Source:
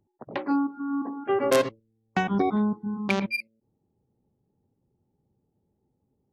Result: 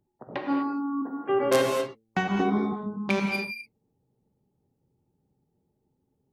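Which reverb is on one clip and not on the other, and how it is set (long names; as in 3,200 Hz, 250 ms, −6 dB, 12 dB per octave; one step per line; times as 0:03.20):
reverb whose tail is shaped and stops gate 270 ms flat, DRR 1 dB
level −2 dB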